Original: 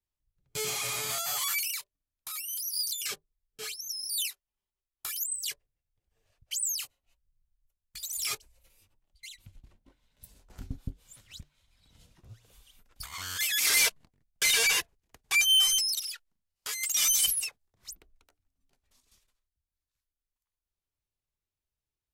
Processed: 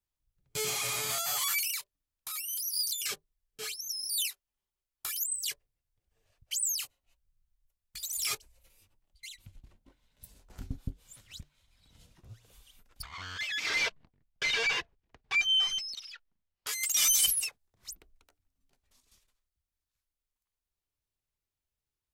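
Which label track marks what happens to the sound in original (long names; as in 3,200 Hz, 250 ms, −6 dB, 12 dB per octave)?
13.020000	16.670000	high-frequency loss of the air 200 metres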